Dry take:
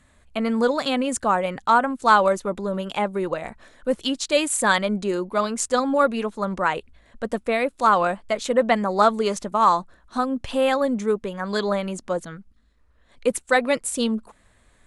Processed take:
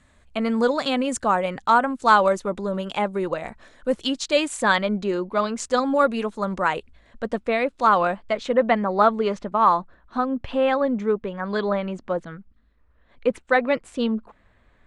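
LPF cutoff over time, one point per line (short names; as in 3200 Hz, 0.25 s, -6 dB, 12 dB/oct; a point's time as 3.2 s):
4.05 s 8400 Hz
4.75 s 4700 Hz
5.5 s 4700 Hz
6.08 s 9600 Hz
6.75 s 9600 Hz
7.37 s 5000 Hz
8.13 s 5000 Hz
8.75 s 2800 Hz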